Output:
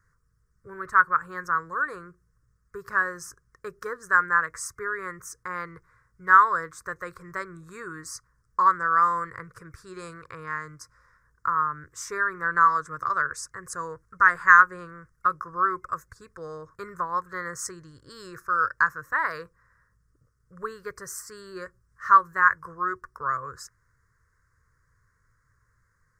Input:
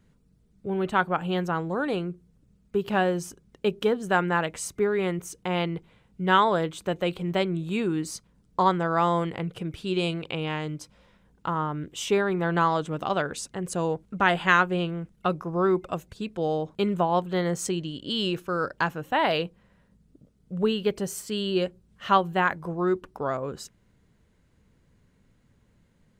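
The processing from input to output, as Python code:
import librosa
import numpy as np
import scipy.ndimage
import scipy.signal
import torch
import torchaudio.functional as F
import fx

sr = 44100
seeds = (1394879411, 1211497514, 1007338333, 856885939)

y = fx.curve_eq(x, sr, hz=(120.0, 210.0, 490.0, 780.0, 1100.0, 1800.0, 3000.0, 5200.0, 10000.0), db=(0, -20, -6, -20, 12, 10, -29, 4, 2))
y = y * 10.0 ** (-3.5 / 20.0)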